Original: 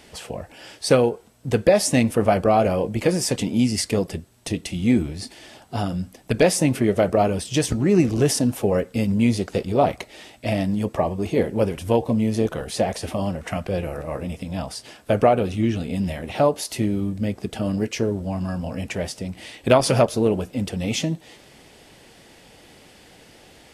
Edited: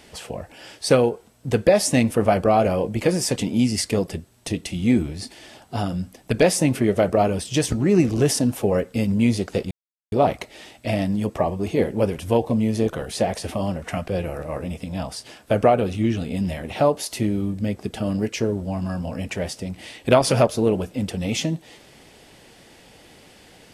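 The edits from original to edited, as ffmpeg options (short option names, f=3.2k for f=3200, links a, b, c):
-filter_complex "[0:a]asplit=2[a][b];[a]atrim=end=9.71,asetpts=PTS-STARTPTS,afade=t=out:st=9.706:d=0.004:c=hsin,apad=pad_dur=0.41[c];[b]atrim=start=9.71,asetpts=PTS-STARTPTS,afade=t=in:d=0.004:c=hsin[d];[c][d]concat=n=2:v=0:a=1"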